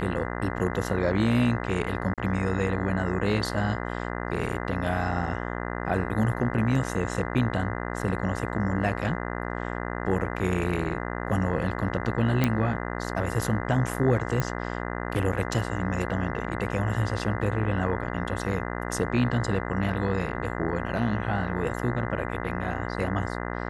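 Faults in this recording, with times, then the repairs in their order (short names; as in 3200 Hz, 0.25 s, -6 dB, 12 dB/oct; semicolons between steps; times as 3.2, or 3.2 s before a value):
buzz 60 Hz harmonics 34 -32 dBFS
2.14–2.18 gap 37 ms
12.44 pop -8 dBFS
14.4 pop -13 dBFS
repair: de-click; de-hum 60 Hz, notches 34; interpolate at 2.14, 37 ms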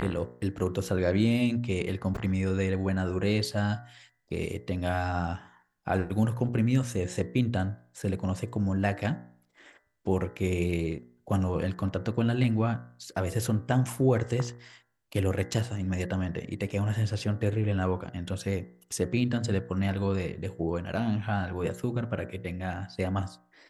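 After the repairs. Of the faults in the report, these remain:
none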